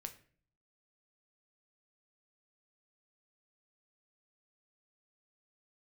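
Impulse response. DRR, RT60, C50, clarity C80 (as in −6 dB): 7.0 dB, 0.45 s, 13.5 dB, 18.0 dB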